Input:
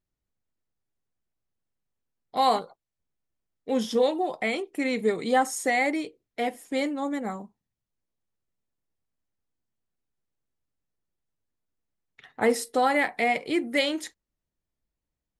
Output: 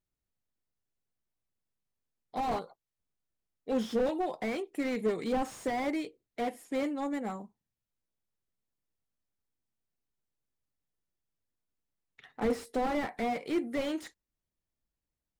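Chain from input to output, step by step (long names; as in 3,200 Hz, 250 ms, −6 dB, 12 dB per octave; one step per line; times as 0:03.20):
slew-rate limiting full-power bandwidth 41 Hz
level −4 dB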